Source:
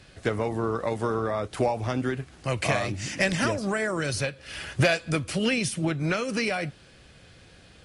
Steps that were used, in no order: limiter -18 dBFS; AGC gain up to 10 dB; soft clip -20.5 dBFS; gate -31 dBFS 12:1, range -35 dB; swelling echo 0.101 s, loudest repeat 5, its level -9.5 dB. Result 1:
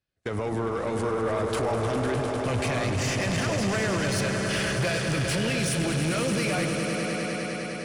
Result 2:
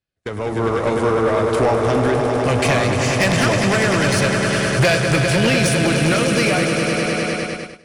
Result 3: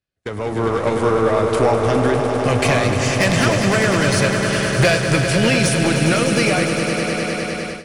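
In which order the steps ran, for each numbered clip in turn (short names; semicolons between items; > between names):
AGC > gate > limiter > swelling echo > soft clip; swelling echo > gate > soft clip > limiter > AGC; soft clip > limiter > swelling echo > AGC > gate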